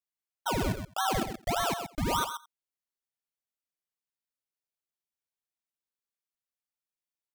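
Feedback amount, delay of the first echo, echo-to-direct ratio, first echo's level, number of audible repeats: no regular repeats, 87 ms, -8.0 dB, -19.0 dB, 3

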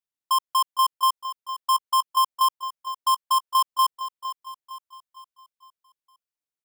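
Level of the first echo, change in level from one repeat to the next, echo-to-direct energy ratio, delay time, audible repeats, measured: -13.0 dB, -6.5 dB, -12.0 dB, 459 ms, 4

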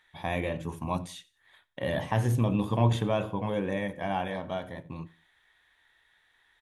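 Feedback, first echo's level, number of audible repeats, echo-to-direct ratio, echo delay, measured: 32%, -22.0 dB, 2, -21.5 dB, 90 ms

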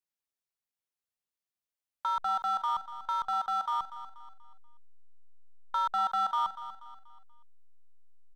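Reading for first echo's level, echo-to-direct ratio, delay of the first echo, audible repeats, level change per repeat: -13.0 dB, -12.5 dB, 241 ms, 3, -8.0 dB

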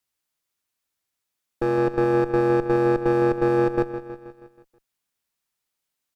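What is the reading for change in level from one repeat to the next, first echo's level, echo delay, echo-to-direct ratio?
-5.0 dB, -13.0 dB, 160 ms, -11.5 dB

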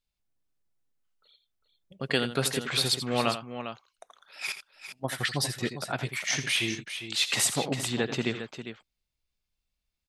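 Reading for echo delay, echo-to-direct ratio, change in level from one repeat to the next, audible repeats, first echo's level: 84 ms, -7.5 dB, no regular repeats, 2, -11.5 dB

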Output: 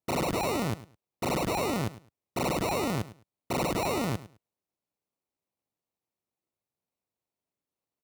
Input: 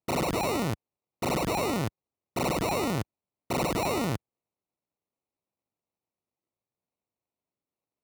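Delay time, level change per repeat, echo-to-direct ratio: 105 ms, -14.0 dB, -16.5 dB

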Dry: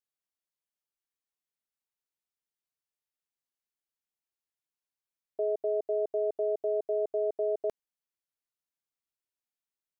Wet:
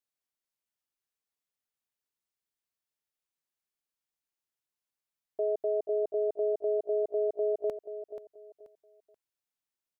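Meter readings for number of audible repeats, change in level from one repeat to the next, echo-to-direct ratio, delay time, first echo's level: 3, -11.0 dB, -10.5 dB, 482 ms, -11.0 dB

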